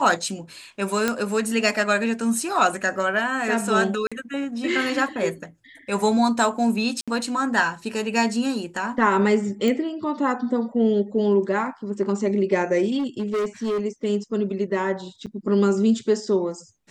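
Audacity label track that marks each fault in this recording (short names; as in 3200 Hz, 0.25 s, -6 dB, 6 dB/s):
1.080000	1.080000	pop -7 dBFS
4.070000	4.120000	gap 46 ms
7.010000	7.080000	gap 66 ms
9.680000	9.680000	pop
12.980000	13.810000	clipped -21 dBFS
15.260000	15.270000	gap 7.3 ms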